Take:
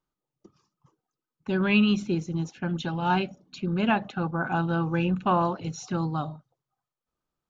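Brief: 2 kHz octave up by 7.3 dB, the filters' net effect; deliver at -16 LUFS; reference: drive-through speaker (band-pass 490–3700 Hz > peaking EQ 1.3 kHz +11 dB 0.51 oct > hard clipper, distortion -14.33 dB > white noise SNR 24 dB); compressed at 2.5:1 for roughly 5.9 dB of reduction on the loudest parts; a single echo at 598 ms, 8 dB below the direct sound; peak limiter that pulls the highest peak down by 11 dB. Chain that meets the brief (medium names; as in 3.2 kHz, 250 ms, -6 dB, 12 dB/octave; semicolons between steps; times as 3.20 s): peaking EQ 2 kHz +5 dB; compression 2.5:1, threshold -25 dBFS; peak limiter -26 dBFS; band-pass 490–3700 Hz; peaking EQ 1.3 kHz +11 dB 0.51 oct; delay 598 ms -8 dB; hard clipper -28.5 dBFS; white noise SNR 24 dB; trim +20.5 dB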